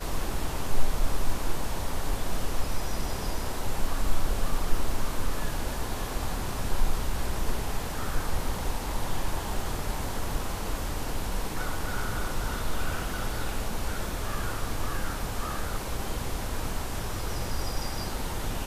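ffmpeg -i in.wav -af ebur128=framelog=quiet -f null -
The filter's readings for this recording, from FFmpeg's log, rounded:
Integrated loudness:
  I:         -33.4 LUFS
  Threshold: -43.4 LUFS
Loudness range:
  LRA:         0.6 LU
  Threshold: -53.4 LUFS
  LRA low:   -33.7 LUFS
  LRA high:  -33.1 LUFS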